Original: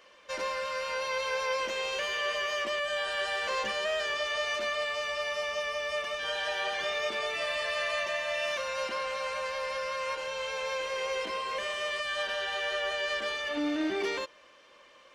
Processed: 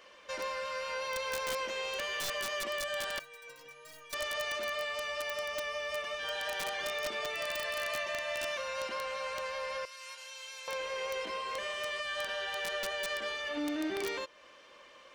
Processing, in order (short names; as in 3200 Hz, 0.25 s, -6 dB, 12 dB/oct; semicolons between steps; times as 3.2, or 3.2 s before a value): 9.85–10.68 differentiator; in parallel at +2 dB: compressor 6:1, threshold -44 dBFS, peak gain reduction 16.5 dB; on the sum: wrapped overs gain 20.5 dB; 3.19–4.13 metallic resonator 140 Hz, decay 0.57 s, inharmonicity 0.03; gain -6 dB